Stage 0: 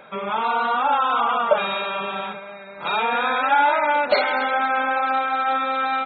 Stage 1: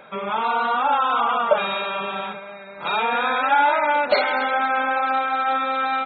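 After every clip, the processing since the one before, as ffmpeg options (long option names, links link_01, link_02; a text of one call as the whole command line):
ffmpeg -i in.wav -af anull out.wav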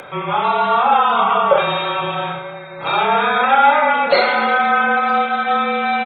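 ffmpeg -i in.wav -af "afreqshift=-35,aecho=1:1:30|66|109.2|161|223.2:0.631|0.398|0.251|0.158|0.1,acompressor=mode=upward:threshold=-34dB:ratio=2.5,volume=3.5dB" out.wav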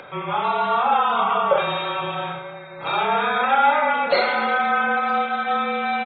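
ffmpeg -i in.wav -af "aresample=11025,aresample=44100,volume=-5dB" out.wav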